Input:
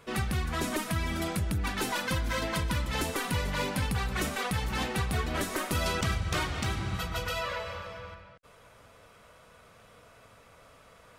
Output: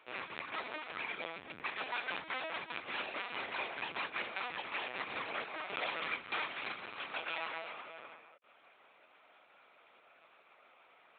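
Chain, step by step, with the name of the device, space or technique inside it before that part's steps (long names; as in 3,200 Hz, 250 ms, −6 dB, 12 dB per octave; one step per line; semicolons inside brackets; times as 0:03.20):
talking toy (linear-prediction vocoder at 8 kHz pitch kept; high-pass filter 510 Hz 12 dB per octave; parametric band 2,400 Hz +7.5 dB 0.24 octaves)
level −6 dB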